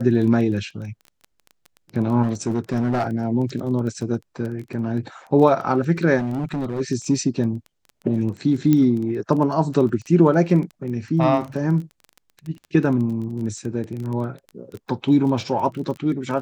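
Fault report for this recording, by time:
crackle 15/s -29 dBFS
2.22–3.07 clipped -16.5 dBFS
6.18–6.81 clipped -21 dBFS
8.73 pop -8 dBFS
9.89 gap 3.7 ms

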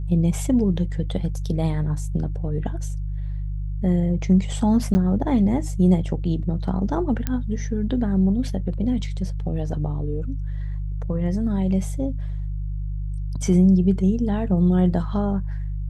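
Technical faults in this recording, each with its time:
hum 50 Hz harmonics 3 -27 dBFS
4.94–4.95 gap 10 ms
7.27 pop -11 dBFS

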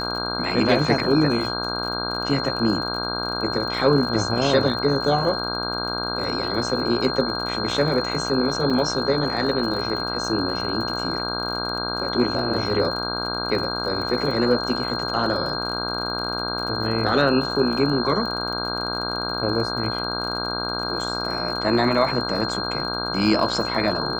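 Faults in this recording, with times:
buzz 60 Hz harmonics 27 -29 dBFS
crackle 48/s -31 dBFS
tone 4200 Hz -28 dBFS
8.7 gap 4.7 ms

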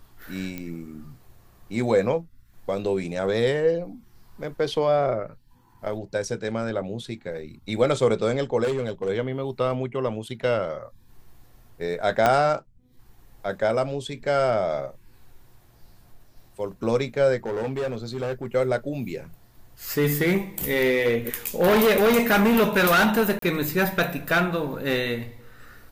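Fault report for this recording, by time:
0.58 pop -18 dBFS
8.63–9.1 clipped -21 dBFS
12.26 pop -6 dBFS
17.46–18.46 clipped -23.5 dBFS
23.39–23.42 gap 33 ms

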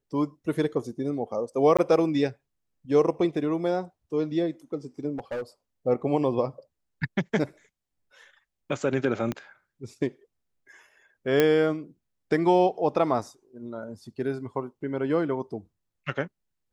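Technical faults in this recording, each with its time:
1.77–1.79 gap 16 ms
5.17–5.43 clipped -28 dBFS
9.32 pop -16 dBFS
11.4 pop -8 dBFS

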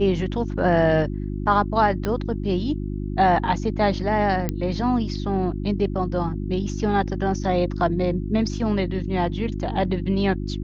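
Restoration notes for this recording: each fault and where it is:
hum 50 Hz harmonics 7 -28 dBFS
2.05 pop -12 dBFS
4.49 pop -11 dBFS

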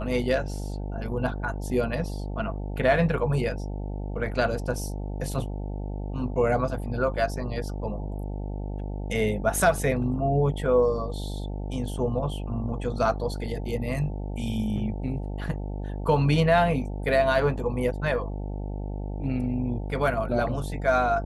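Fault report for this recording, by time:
buzz 50 Hz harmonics 18 -32 dBFS

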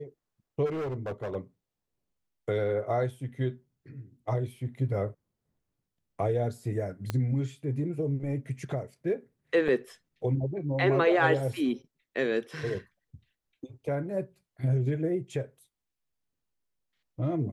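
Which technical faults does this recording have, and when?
0.65–1.36 clipped -30 dBFS
7.1 pop -16 dBFS
9.68–9.69 gap 5.3 ms

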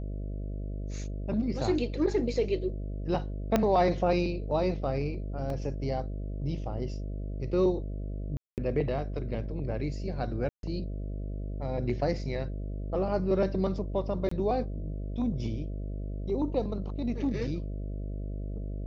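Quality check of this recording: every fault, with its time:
buzz 50 Hz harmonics 13 -35 dBFS
3.56 pop -11 dBFS
5.5 gap 2.3 ms
8.37–8.58 gap 0.208 s
10.49–10.63 gap 0.142 s
14.29–14.31 gap 24 ms

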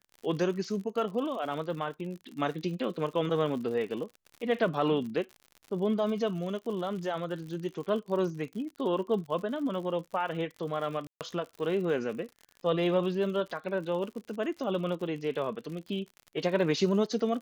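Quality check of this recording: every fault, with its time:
crackle 72/s -39 dBFS
11.07–11.21 gap 0.138 s

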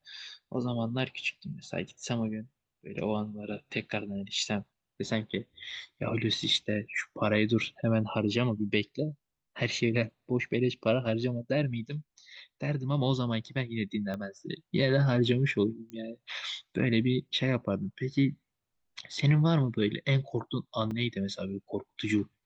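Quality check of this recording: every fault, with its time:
14.14 pop -24 dBFS
15.9 pop -29 dBFS
20.91 gap 3.2 ms

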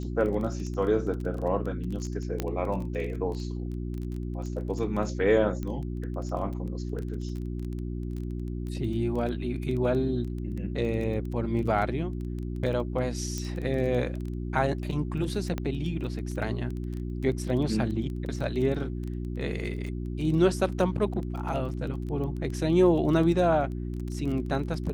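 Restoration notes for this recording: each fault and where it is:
crackle 16/s -33 dBFS
hum 60 Hz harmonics 6 -33 dBFS
2.4 pop -14 dBFS
5.63 pop -22 dBFS
13.38 pop -20 dBFS
15.58 pop -18 dBFS

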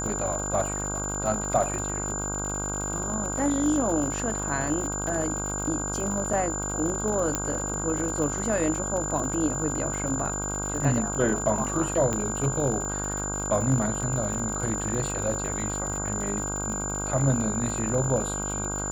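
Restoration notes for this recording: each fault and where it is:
buzz 50 Hz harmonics 32 -33 dBFS
crackle 100/s -32 dBFS
tone 7100 Hz -31 dBFS
6.33 gap 3.2 ms
7.35 pop -9 dBFS
12.13 pop -15 dBFS

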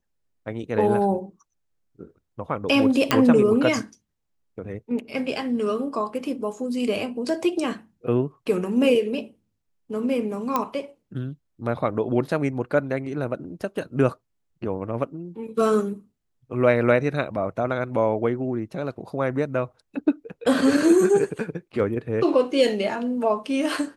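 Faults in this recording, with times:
3.11 pop -3 dBFS
10.56 pop -9 dBFS

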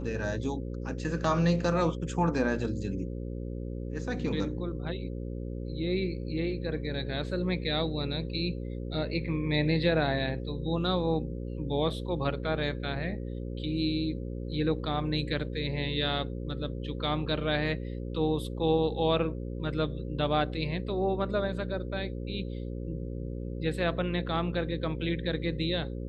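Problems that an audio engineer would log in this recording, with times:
buzz 60 Hz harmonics 9 -36 dBFS

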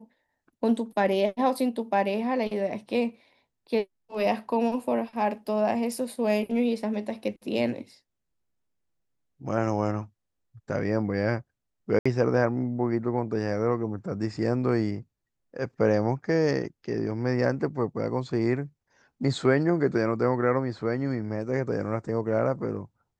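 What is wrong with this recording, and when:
11.99–12.05 gap 65 ms

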